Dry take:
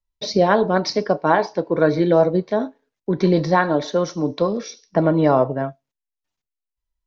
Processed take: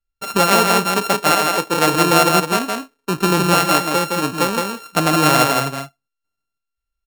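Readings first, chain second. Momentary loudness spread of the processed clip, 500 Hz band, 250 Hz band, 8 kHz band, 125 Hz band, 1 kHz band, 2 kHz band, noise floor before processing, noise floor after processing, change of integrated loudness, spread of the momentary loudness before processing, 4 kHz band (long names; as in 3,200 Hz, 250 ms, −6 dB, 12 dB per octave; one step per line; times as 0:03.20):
10 LU, −2.0 dB, 0.0 dB, can't be measured, +1.0 dB, +6.0 dB, +8.0 dB, −85 dBFS, −81 dBFS, +3.0 dB, 9 LU, +11.5 dB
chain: samples sorted by size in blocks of 32 samples
single-tap delay 164 ms −3.5 dB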